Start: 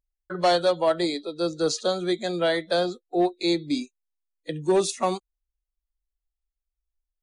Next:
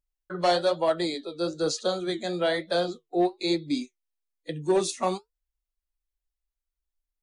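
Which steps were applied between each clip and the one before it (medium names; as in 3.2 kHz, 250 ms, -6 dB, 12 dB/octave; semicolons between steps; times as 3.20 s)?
flange 1.1 Hz, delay 4.8 ms, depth 7.3 ms, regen -63%; trim +2 dB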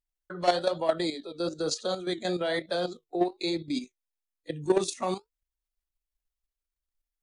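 level held to a coarse grid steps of 10 dB; trim +2 dB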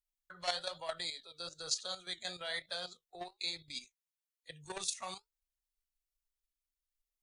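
amplifier tone stack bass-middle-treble 10-0-10; trim -1 dB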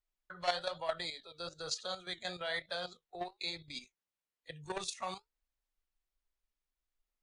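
low-pass 2.1 kHz 6 dB/octave; trim +5 dB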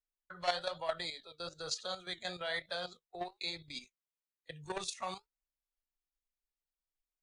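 gate -54 dBFS, range -9 dB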